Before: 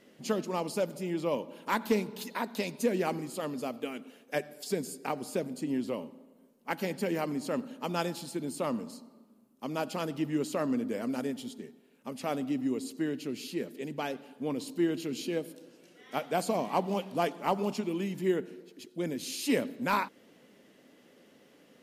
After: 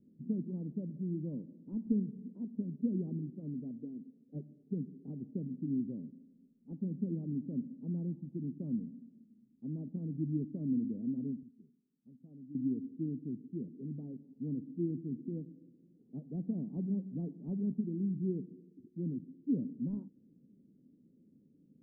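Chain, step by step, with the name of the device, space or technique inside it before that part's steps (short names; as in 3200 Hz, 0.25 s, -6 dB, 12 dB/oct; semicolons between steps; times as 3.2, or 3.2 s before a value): 11.43–12.55 pre-emphasis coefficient 0.8; the neighbour's flat through the wall (LPF 270 Hz 24 dB/oct; bell 150 Hz +4 dB 0.63 oct)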